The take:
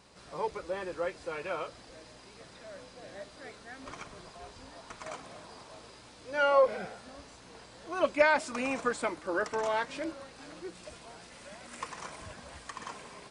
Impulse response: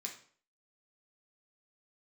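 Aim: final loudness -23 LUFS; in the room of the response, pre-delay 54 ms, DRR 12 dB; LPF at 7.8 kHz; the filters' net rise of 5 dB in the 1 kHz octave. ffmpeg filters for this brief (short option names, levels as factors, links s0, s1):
-filter_complex "[0:a]lowpass=7800,equalizer=f=1000:t=o:g=6,asplit=2[s0][s1];[1:a]atrim=start_sample=2205,adelay=54[s2];[s1][s2]afir=irnorm=-1:irlink=0,volume=0.316[s3];[s0][s3]amix=inputs=2:normalize=0,volume=2.11"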